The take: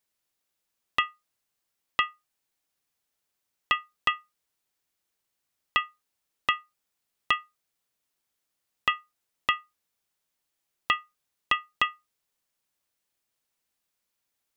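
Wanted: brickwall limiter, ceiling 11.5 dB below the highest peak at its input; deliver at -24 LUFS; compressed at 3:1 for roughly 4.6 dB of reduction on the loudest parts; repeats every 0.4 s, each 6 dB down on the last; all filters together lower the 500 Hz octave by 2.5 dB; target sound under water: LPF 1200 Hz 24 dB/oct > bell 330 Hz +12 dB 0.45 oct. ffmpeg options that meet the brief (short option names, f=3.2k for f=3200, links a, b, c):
-af "equalizer=f=500:t=o:g=-8,acompressor=threshold=-26dB:ratio=3,alimiter=limit=-20.5dB:level=0:latency=1,lowpass=f=1.2k:w=0.5412,lowpass=f=1.2k:w=1.3066,equalizer=f=330:t=o:w=0.45:g=12,aecho=1:1:400|800|1200|1600|2000|2400:0.501|0.251|0.125|0.0626|0.0313|0.0157,volume=26dB"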